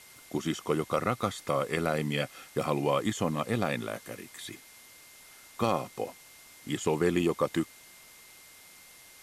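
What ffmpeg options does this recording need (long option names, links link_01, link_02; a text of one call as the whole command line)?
ffmpeg -i in.wav -af "bandreject=frequency=2100:width=30,afwtdn=0.0025" out.wav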